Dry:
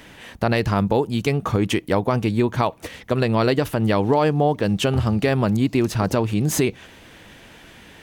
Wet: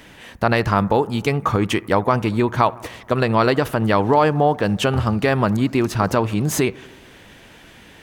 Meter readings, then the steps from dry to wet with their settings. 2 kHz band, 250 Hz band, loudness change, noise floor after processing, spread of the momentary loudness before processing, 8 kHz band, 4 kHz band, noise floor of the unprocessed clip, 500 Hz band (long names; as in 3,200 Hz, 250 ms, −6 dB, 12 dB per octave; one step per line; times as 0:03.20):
+4.0 dB, +0.5 dB, +1.5 dB, −46 dBFS, 4 LU, 0.0 dB, +1.0 dB, −46 dBFS, +1.5 dB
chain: dynamic equaliser 1,200 Hz, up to +7 dB, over −35 dBFS, Q 0.91
on a send: bucket-brigade delay 77 ms, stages 1,024, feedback 70%, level −22.5 dB